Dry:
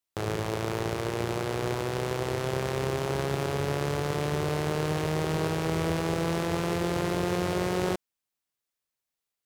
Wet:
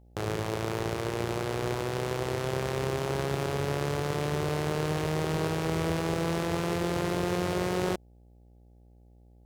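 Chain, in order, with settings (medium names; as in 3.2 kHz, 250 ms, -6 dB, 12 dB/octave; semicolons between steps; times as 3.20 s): mains buzz 60 Hz, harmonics 14, -55 dBFS -7 dB/octave; trim -1 dB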